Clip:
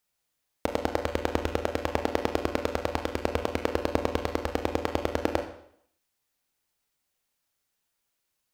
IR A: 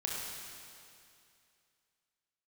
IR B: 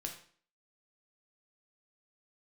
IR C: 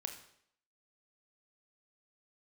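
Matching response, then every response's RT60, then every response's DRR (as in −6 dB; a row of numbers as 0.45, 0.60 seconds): C; 2.5, 0.50, 0.65 seconds; −3.5, 1.5, 4.5 decibels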